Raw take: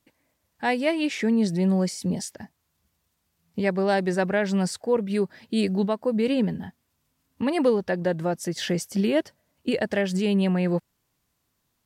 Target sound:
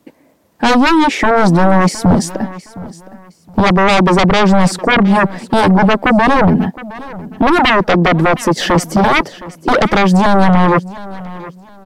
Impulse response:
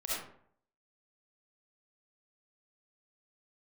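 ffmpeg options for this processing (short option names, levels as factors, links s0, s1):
-filter_complex "[0:a]tiltshelf=f=920:g=8.5,acrossover=split=190[s0][s1];[s1]aeval=exprs='0.447*sin(PI/2*5.62*val(0)/0.447)':c=same[s2];[s0][s2]amix=inputs=2:normalize=0,aecho=1:1:715|1430:0.126|0.034"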